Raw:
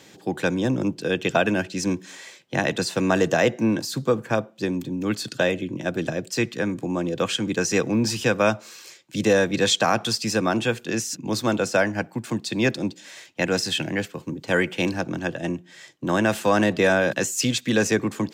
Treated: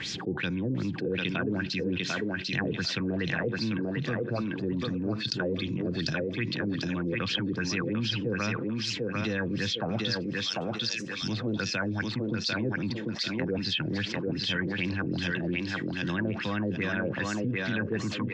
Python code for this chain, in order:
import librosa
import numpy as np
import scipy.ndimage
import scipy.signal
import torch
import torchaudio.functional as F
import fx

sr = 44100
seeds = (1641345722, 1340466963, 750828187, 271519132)

p1 = fx.pre_emphasis(x, sr, coefficient=0.97, at=(10.21, 11.22))
p2 = fx.env_lowpass_down(p1, sr, base_hz=1800.0, full_db=-18.5)
p3 = fx.tone_stack(p2, sr, knobs='6-0-2')
p4 = fx.rider(p3, sr, range_db=4, speed_s=0.5)
p5 = p3 + F.gain(torch.from_numpy(p4), 0.0).numpy()
p6 = fx.filter_lfo_lowpass(p5, sr, shape='sine', hz=2.5, low_hz=420.0, high_hz=5400.0, q=4.6)
p7 = fx.echo_thinned(p6, sr, ms=746, feedback_pct=19, hz=200.0, wet_db=-3.5)
y = fx.env_flatten(p7, sr, amount_pct=70)